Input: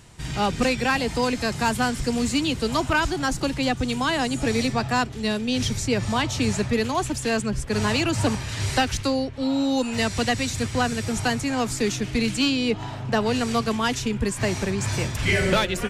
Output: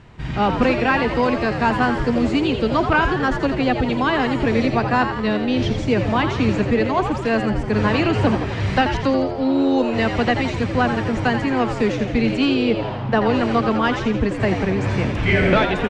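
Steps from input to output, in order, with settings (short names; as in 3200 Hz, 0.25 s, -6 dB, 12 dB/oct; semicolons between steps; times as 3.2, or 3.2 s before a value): LPF 2400 Hz 12 dB/oct; on a send: frequency-shifting echo 84 ms, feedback 56%, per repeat +89 Hz, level -8 dB; on the sum: gain +4.5 dB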